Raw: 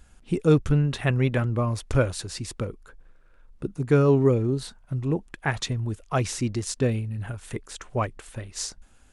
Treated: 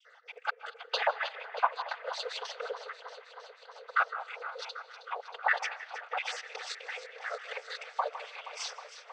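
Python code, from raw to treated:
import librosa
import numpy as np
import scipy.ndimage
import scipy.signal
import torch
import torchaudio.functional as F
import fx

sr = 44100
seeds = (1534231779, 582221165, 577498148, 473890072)

y = fx.spec_dropout(x, sr, seeds[0], share_pct=58)
y = scipy.signal.sosfilt(scipy.signal.butter(4, 3700.0, 'lowpass', fs=sr, output='sos'), y)
y = fx.dynamic_eq(y, sr, hz=2500.0, q=1.0, threshold_db=-49.0, ratio=4.0, max_db=-4)
y = fx.over_compress(y, sr, threshold_db=-32.0, ratio=-0.5)
y = fx.noise_vocoder(y, sr, seeds[1], bands=16)
y = fx.brickwall_highpass(y, sr, low_hz=430.0)
y = fx.echo_alternate(y, sr, ms=158, hz=1900.0, feedback_pct=87, wet_db=-12)
y = fx.rev_freeverb(y, sr, rt60_s=0.66, hf_ratio=0.45, predelay_ms=115, drr_db=19.0)
y = y * 10.0 ** (4.0 / 20.0)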